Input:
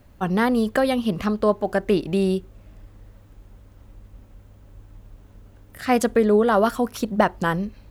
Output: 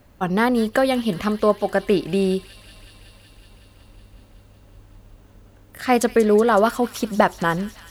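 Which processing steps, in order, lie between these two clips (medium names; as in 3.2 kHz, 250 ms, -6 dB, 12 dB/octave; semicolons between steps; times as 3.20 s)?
bass shelf 170 Hz -5.5 dB; feedback echo behind a high-pass 186 ms, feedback 81%, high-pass 3 kHz, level -11 dB; trim +2.5 dB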